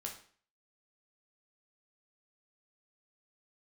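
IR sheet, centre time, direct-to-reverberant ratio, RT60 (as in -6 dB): 21 ms, 0.0 dB, 0.45 s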